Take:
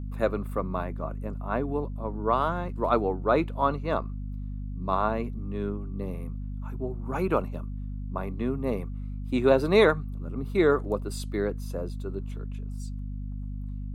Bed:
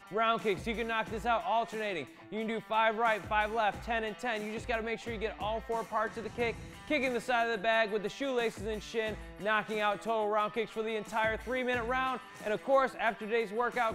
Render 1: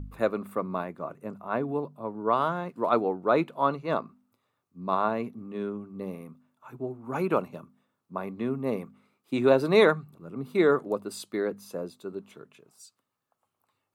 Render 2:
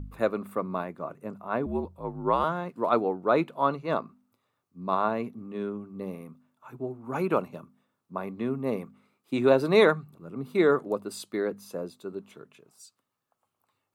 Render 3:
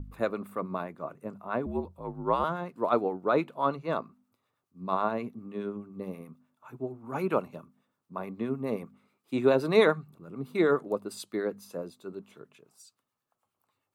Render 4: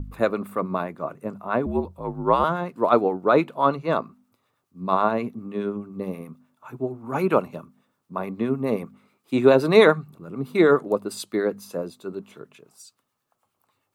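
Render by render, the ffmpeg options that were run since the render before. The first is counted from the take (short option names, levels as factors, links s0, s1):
-af "bandreject=f=50:t=h:w=4,bandreject=f=100:t=h:w=4,bandreject=f=150:t=h:w=4,bandreject=f=200:t=h:w=4,bandreject=f=250:t=h:w=4"
-filter_complex "[0:a]asettb=1/sr,asplit=3[s0][s1][s2];[s0]atrim=end=1.664[s3];[s1]atrim=start=1.66:end=2.44,asetpts=PTS-STARTPTS,afade=t=in:d=0.004:c=qsin,afade=t=out:st=0.776:d=0.004:c=qsin,afreqshift=-64[s4];[s2]atrim=start=2.436[s5];[s3][s4]acrossfade=d=0.004:c1=hsin:c2=qsin[s6];[s6][s5]acrossfade=d=0.004:c1=qsin:c2=hsin"
-filter_complex "[0:a]acrossover=split=1100[s0][s1];[s0]aeval=exprs='val(0)*(1-0.5/2+0.5/2*cos(2*PI*9.5*n/s))':c=same[s2];[s1]aeval=exprs='val(0)*(1-0.5/2-0.5/2*cos(2*PI*9.5*n/s))':c=same[s3];[s2][s3]amix=inputs=2:normalize=0"
-af "volume=2.37,alimiter=limit=0.794:level=0:latency=1"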